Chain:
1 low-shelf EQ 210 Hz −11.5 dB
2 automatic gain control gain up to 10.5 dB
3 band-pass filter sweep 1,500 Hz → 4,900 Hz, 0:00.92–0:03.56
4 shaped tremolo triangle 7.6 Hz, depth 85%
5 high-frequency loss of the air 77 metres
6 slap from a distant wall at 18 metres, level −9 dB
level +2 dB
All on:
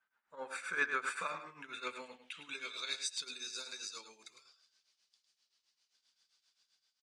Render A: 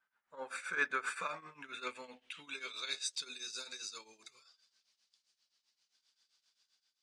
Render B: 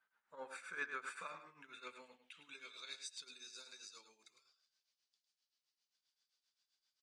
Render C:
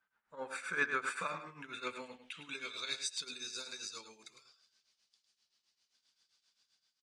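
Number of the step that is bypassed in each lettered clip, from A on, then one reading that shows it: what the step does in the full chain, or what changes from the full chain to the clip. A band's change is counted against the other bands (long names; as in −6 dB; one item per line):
6, change in momentary loudness spread +2 LU
2, change in momentary loudness spread +1 LU
1, 250 Hz band +4.0 dB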